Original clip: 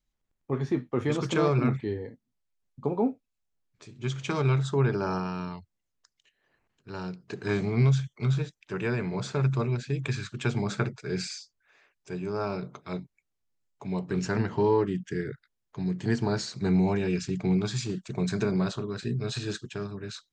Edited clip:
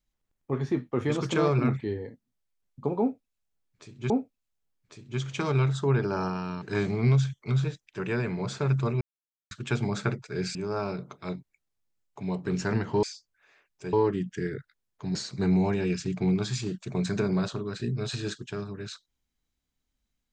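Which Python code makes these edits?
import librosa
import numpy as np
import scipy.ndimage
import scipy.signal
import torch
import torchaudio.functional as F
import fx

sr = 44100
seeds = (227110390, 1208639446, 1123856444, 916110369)

y = fx.edit(x, sr, fx.repeat(start_s=3.0, length_s=1.1, count=2),
    fx.cut(start_s=5.52, length_s=1.84),
    fx.silence(start_s=9.75, length_s=0.5),
    fx.move(start_s=11.29, length_s=0.9, to_s=14.67),
    fx.cut(start_s=15.89, length_s=0.49), tone=tone)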